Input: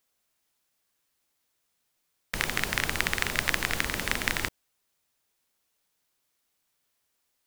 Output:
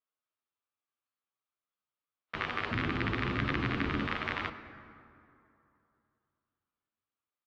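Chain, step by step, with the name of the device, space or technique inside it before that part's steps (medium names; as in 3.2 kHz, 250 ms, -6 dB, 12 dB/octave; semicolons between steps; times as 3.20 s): spectral noise reduction 13 dB; 2.71–4.05 s: resonant low shelf 410 Hz +10.5 dB, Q 1.5; barber-pole flanger into a guitar amplifier (endless flanger 10.7 ms +0.49 Hz; saturation -18.5 dBFS, distortion -15 dB; cabinet simulation 77–3400 Hz, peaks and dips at 180 Hz -7 dB, 1.2 kHz +9 dB, 1.9 kHz -3 dB); plate-style reverb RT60 2.8 s, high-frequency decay 0.5×, DRR 10 dB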